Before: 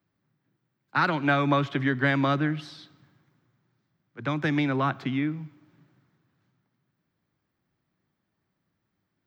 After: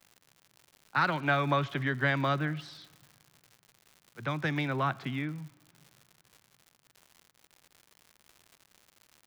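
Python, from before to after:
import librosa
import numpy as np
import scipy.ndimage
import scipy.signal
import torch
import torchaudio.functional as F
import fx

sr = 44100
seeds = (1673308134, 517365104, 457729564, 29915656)

y = fx.peak_eq(x, sr, hz=290.0, db=-6.5, octaves=0.77)
y = fx.dmg_crackle(y, sr, seeds[0], per_s=170.0, level_db=-40.0)
y = F.gain(torch.from_numpy(y), -3.0).numpy()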